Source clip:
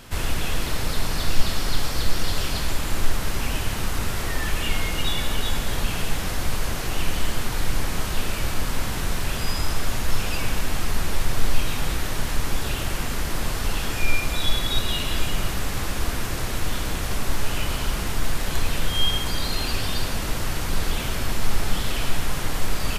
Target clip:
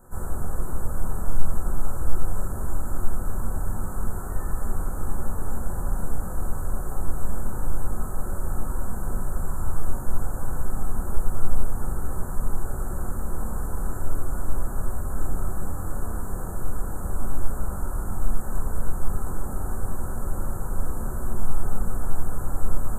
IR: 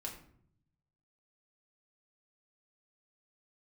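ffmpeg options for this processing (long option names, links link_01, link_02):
-filter_complex "[0:a]asuperstop=centerf=3400:order=12:qfactor=0.59[link_01];[1:a]atrim=start_sample=2205,asetrate=52920,aresample=44100[link_02];[link_01][link_02]afir=irnorm=-1:irlink=0,volume=-3dB"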